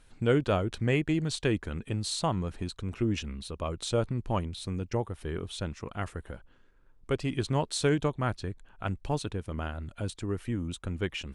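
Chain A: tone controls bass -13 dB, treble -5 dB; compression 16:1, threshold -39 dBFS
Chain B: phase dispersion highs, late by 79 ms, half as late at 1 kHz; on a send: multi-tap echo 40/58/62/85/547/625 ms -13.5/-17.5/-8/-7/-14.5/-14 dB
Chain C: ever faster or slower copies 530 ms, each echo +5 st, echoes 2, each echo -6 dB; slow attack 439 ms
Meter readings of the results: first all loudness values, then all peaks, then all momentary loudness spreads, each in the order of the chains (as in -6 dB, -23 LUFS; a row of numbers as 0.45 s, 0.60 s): -45.0 LUFS, -30.0 LUFS, -35.0 LUFS; -24.5 dBFS, -12.0 dBFS, -13.5 dBFS; 5 LU, 10 LU, 17 LU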